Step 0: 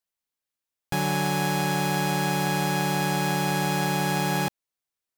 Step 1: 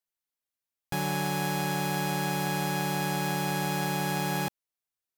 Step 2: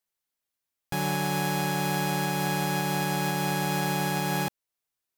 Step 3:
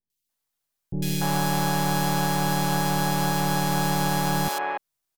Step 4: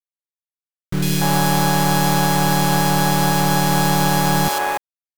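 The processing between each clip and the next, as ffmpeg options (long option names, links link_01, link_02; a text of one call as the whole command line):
ffmpeg -i in.wav -af "equalizer=frequency=13000:width_type=o:width=0.48:gain=4,volume=-4.5dB" out.wav
ffmpeg -i in.wav -af "alimiter=limit=-22dB:level=0:latency=1:release=342,volume=4dB" out.wav
ffmpeg -i in.wav -filter_complex "[0:a]aeval=exprs='if(lt(val(0),0),0.447*val(0),val(0))':channel_layout=same,acrossover=split=400|2400[link_01][link_02][link_03];[link_03]adelay=100[link_04];[link_02]adelay=290[link_05];[link_01][link_05][link_04]amix=inputs=3:normalize=0,volume=7dB" out.wav
ffmpeg -i in.wav -af "acrusher=bits=5:mix=0:aa=0.000001,volume=7dB" out.wav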